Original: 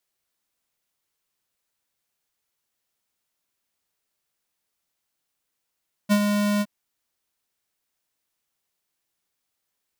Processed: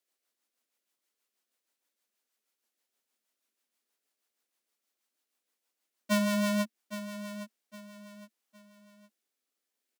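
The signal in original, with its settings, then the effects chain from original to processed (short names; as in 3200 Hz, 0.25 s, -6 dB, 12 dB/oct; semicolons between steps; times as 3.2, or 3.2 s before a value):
ADSR square 206 Hz, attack 30 ms, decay 67 ms, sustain -5.5 dB, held 0.52 s, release 45 ms -16.5 dBFS
elliptic high-pass 220 Hz; rotary speaker horn 6.3 Hz, later 0.65 Hz, at 6.59; feedback echo 0.812 s, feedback 34%, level -12 dB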